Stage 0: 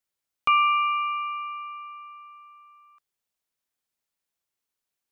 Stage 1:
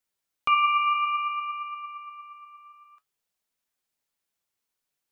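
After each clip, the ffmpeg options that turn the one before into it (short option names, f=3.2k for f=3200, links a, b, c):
-filter_complex "[0:a]asplit=2[a][b];[b]alimiter=limit=-23dB:level=0:latency=1,volume=0dB[c];[a][c]amix=inputs=2:normalize=0,flanger=delay=3.8:depth=6.5:regen=69:speed=0.56:shape=triangular"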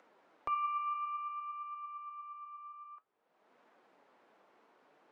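-filter_complex "[0:a]lowpass=1k,acrossover=split=230[a][b];[a]acrusher=samples=28:mix=1:aa=0.000001:lfo=1:lforange=44.8:lforate=1.6[c];[b]acompressor=mode=upward:threshold=-30dB:ratio=2.5[d];[c][d]amix=inputs=2:normalize=0,volume=-7.5dB"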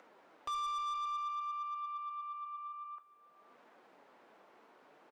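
-af "asoftclip=type=tanh:threshold=-39.5dB,aecho=1:1:577:0.112,volume=4.5dB"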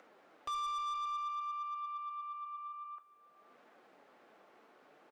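-af "bandreject=f=960:w=9.6"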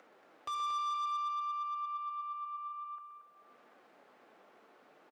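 -filter_complex "[0:a]highpass=62,asplit=2[a][b];[b]aecho=0:1:125.4|230.3:0.282|0.355[c];[a][c]amix=inputs=2:normalize=0"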